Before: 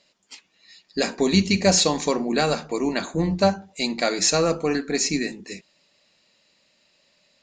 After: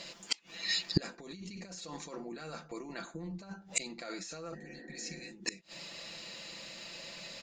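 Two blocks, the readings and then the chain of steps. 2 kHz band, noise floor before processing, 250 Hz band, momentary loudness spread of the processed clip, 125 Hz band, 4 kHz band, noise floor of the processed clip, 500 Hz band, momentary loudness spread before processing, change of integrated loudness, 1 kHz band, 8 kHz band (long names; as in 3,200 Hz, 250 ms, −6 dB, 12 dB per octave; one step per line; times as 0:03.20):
−13.0 dB, −65 dBFS, −19.0 dB, 12 LU, −15.0 dB, −11.5 dB, −57 dBFS, −22.5 dB, 9 LU, −17.5 dB, −21.0 dB, −15.5 dB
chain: compressor whose output falls as the input rises −25 dBFS, ratio −1
dynamic equaliser 1,400 Hz, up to +6 dB, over −49 dBFS, Q 3.4
comb filter 5.9 ms, depth 49%
healed spectral selection 0:04.57–0:05.25, 200–2,000 Hz after
gate with flip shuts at −27 dBFS, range −32 dB
level +12.5 dB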